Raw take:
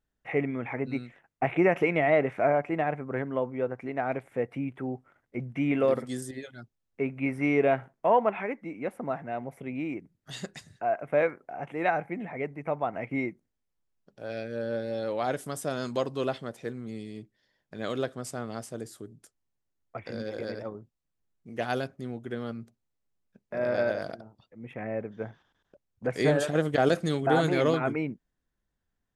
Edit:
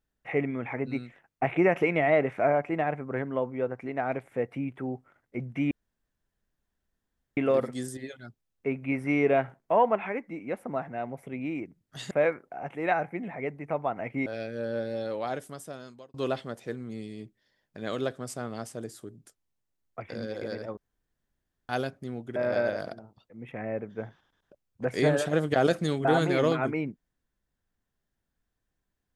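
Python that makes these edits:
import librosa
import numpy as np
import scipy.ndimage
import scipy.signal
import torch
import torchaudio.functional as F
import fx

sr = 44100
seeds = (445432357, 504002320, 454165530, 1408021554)

y = fx.edit(x, sr, fx.insert_room_tone(at_s=5.71, length_s=1.66),
    fx.cut(start_s=10.45, length_s=0.63),
    fx.cut(start_s=13.23, length_s=1.0),
    fx.fade_out_span(start_s=14.88, length_s=1.23),
    fx.room_tone_fill(start_s=20.74, length_s=0.92),
    fx.cut(start_s=22.33, length_s=1.25), tone=tone)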